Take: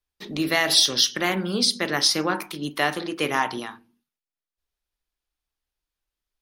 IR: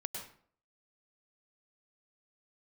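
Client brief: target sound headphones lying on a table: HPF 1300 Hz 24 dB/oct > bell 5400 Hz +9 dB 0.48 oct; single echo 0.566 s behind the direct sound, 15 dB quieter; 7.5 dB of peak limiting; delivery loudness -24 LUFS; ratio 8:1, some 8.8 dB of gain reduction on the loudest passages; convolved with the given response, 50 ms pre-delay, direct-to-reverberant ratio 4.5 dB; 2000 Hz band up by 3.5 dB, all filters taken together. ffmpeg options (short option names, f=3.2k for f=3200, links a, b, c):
-filter_complex "[0:a]equalizer=f=2k:t=o:g=4,acompressor=threshold=-23dB:ratio=8,alimiter=limit=-16.5dB:level=0:latency=1,aecho=1:1:566:0.178,asplit=2[a][b];[1:a]atrim=start_sample=2205,adelay=50[c];[b][c]afir=irnorm=-1:irlink=0,volume=-4.5dB[d];[a][d]amix=inputs=2:normalize=0,highpass=f=1.3k:w=0.5412,highpass=f=1.3k:w=1.3066,equalizer=f=5.4k:t=o:w=0.48:g=9,volume=1dB"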